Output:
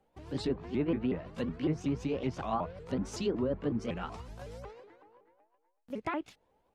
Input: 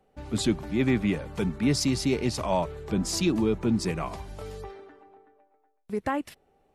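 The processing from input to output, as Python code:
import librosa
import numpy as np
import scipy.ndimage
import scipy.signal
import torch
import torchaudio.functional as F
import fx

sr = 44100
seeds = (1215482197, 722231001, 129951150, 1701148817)

y = fx.pitch_ramps(x, sr, semitones=5.0, every_ms=186)
y = fx.env_lowpass_down(y, sr, base_hz=1500.0, full_db=-21.0)
y = y * librosa.db_to_amplitude(-5.5)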